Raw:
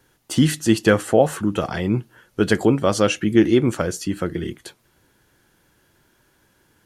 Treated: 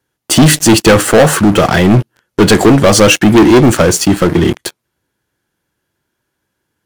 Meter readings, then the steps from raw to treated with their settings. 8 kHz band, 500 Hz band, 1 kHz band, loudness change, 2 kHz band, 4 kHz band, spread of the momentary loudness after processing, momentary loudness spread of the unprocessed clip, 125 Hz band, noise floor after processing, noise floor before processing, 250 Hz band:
+17.0 dB, +10.5 dB, +13.0 dB, +11.5 dB, +12.5 dB, +15.0 dB, 7 LU, 9 LU, +12.0 dB, −72 dBFS, −62 dBFS, +10.5 dB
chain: high-pass filter 47 Hz
leveller curve on the samples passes 5

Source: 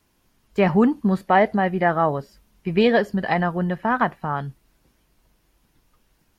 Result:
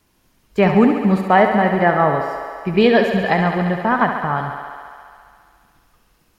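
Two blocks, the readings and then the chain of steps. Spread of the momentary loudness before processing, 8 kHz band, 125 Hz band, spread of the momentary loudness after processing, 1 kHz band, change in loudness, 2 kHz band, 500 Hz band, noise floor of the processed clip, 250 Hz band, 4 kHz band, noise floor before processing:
12 LU, can't be measured, +4.0 dB, 13 LU, +5.0 dB, +4.5 dB, +5.0 dB, +4.5 dB, −61 dBFS, +4.5 dB, +5.0 dB, −66 dBFS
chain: feedback echo with a high-pass in the loop 69 ms, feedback 83%, high-pass 200 Hz, level −8 dB
level +3.5 dB

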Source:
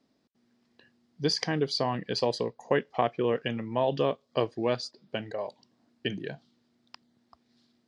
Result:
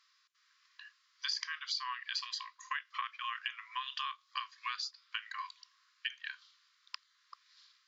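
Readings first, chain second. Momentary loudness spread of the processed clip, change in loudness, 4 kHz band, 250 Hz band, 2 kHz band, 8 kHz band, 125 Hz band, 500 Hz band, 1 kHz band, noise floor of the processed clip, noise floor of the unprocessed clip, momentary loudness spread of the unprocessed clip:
18 LU, −9.5 dB, −3.0 dB, below −40 dB, −1.5 dB, −4.5 dB, below −40 dB, below −40 dB, −7.0 dB, −73 dBFS, −72 dBFS, 10 LU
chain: harmonic and percussive parts rebalanced harmonic +5 dB
linear-phase brick-wall band-pass 1,000–7,500 Hz
downward compressor 4 to 1, threshold −43 dBFS, peak gain reduction 16.5 dB
level +6.5 dB

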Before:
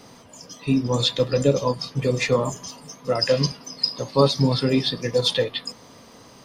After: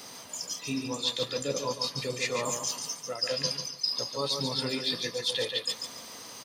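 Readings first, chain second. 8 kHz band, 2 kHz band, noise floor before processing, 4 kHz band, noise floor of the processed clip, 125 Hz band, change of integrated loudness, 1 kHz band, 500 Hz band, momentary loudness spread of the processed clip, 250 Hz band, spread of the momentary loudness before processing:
+2.0 dB, −5.0 dB, −48 dBFS, −4.0 dB, −46 dBFS, −17.0 dB, −8.5 dB, −8.5 dB, −12.0 dB, 6 LU, −13.5 dB, 13 LU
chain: spectral tilt +3 dB per octave
reversed playback
downward compressor 4 to 1, threshold −30 dBFS, peak gain reduction 17.5 dB
reversed playback
repeating echo 143 ms, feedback 27%, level −6 dB

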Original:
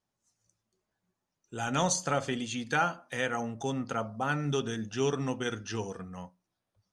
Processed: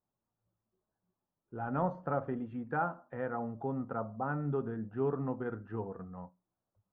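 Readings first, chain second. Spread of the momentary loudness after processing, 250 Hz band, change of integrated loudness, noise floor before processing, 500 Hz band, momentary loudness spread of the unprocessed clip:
9 LU, −3.0 dB, −5.0 dB, below −85 dBFS, −3.0 dB, 12 LU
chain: low-pass filter 1,300 Hz 24 dB per octave
level −3 dB

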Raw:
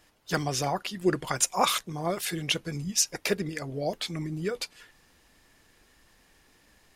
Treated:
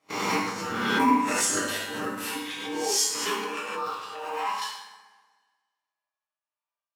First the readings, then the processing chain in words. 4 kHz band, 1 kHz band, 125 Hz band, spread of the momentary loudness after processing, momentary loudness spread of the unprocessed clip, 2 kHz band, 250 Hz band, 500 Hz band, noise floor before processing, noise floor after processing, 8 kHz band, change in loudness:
+0.5 dB, +5.0 dB, −10.0 dB, 11 LU, 7 LU, +5.0 dB, +3.0 dB, −1.5 dB, −63 dBFS, below −85 dBFS, +1.5 dB, +2.0 dB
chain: peak hold with a rise ahead of every peak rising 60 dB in 0.53 s
noise gate −47 dBFS, range −35 dB
parametric band 2,100 Hz +6.5 dB 0.67 octaves
transient designer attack +9 dB, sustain −3 dB
ring modulation 620 Hz
in parallel at −7 dB: floating-point word with a short mantissa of 2 bits
on the sum: gate pattern ".xxxx.xx..xxxxxx" 152 BPM −12 dB
tuned comb filter 99 Hz, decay 0.57 s, harmonics all, mix 80%
high-pass filter sweep 240 Hz → 840 Hz, 0:02.61–0:04.64
on a send: bucket-brigade delay 61 ms, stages 1,024, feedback 74%, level −11 dB
on the sum: coupled-rooms reverb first 0.63 s, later 1.6 s, from −18 dB, DRR −7 dB
background raised ahead of every attack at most 33 dB per second
level −5 dB

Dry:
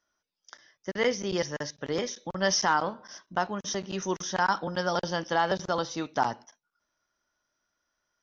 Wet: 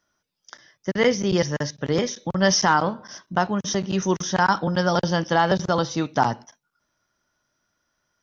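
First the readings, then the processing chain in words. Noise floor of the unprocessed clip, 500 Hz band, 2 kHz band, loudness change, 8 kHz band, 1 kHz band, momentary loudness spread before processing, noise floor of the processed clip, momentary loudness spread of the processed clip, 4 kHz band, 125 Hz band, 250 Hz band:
−83 dBFS, +6.5 dB, +5.5 dB, +7.0 dB, can't be measured, +6.0 dB, 9 LU, −76 dBFS, 8 LU, +5.5 dB, +12.5 dB, +10.5 dB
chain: parametric band 130 Hz +8.5 dB 1.8 octaves
level +5.5 dB

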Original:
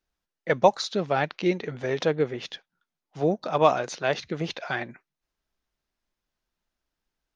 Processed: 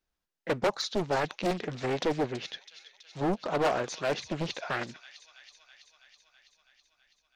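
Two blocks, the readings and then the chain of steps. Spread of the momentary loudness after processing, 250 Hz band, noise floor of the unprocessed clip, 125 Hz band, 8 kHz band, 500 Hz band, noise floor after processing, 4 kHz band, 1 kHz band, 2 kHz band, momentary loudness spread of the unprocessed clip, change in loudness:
20 LU, −3.5 dB, below −85 dBFS, −4.0 dB, can't be measured, −6.0 dB, −85 dBFS, −2.0 dB, −6.0 dB, −4.0 dB, 13 LU, −5.5 dB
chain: delay with a high-pass on its return 327 ms, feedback 72%, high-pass 3,300 Hz, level −10 dB
hard clipping −20 dBFS, distortion −7 dB
highs frequency-modulated by the lows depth 0.88 ms
level −2 dB

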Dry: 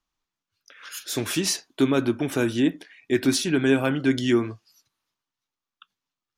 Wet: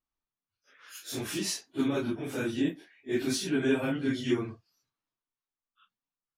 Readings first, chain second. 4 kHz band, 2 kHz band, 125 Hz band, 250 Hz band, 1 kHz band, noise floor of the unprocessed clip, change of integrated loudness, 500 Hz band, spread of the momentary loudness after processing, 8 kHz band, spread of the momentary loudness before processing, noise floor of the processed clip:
−7.5 dB, −7.5 dB, −8.0 dB, −7.5 dB, −8.0 dB, below −85 dBFS, −7.5 dB, −7.5 dB, 11 LU, −7.5 dB, 10 LU, below −85 dBFS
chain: random phases in long frames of 100 ms
one half of a high-frequency compander decoder only
level −7.5 dB

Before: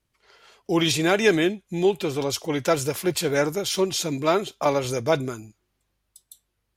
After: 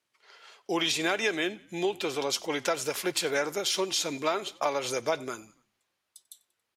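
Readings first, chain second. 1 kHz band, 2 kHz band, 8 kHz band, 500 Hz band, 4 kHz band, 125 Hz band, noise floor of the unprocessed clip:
−4.5 dB, −3.5 dB, −3.0 dB, −7.5 dB, −2.0 dB, −16.0 dB, −76 dBFS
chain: meter weighting curve A
downward compressor 5 to 1, threshold −24 dBFS, peak gain reduction 8.5 dB
echo with shifted repeats 93 ms, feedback 51%, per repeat −38 Hz, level −23 dB

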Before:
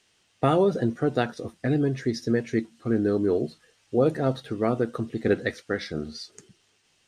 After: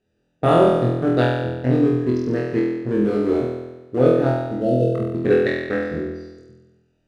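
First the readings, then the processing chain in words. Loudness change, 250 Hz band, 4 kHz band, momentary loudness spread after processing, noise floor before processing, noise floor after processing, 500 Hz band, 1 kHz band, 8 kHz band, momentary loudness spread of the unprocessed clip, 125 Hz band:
+6.5 dB, +6.0 dB, +2.0 dB, 10 LU, −67 dBFS, −69 dBFS, +6.5 dB, +6.5 dB, can't be measured, 9 LU, +6.5 dB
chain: adaptive Wiener filter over 41 samples
healed spectral selection 0:04.56–0:04.86, 700–2,600 Hz
flutter between parallel walls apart 4.1 metres, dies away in 1.1 s
level +2 dB

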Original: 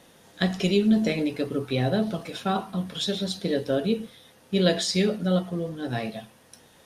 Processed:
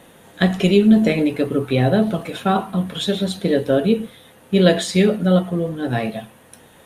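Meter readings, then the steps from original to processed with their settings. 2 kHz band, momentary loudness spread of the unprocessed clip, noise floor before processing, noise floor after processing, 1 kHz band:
+7.0 dB, 9 LU, −56 dBFS, −49 dBFS, +8.0 dB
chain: parametric band 5,200 Hz −12.5 dB 0.69 octaves
level +8 dB

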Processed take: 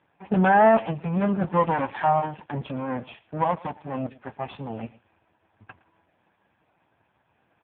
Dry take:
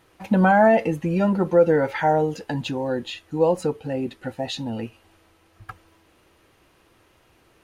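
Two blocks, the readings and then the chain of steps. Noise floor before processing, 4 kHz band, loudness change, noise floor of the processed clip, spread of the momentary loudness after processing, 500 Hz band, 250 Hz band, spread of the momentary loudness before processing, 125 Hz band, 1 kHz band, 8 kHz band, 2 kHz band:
−60 dBFS, −10.5 dB, −2.5 dB, −70 dBFS, 18 LU, −5.0 dB, −4.0 dB, 14 LU, −2.5 dB, +1.0 dB, below −35 dB, −2.0 dB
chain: lower of the sound and its delayed copy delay 1.2 ms
low-shelf EQ 120 Hz −5 dB
low-pass that shuts in the quiet parts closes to 1,900 Hz, open at −16.5 dBFS
on a send: single-tap delay 113 ms −20.5 dB
on the sum: AMR narrowband 5.15 kbit/s 8,000 Hz

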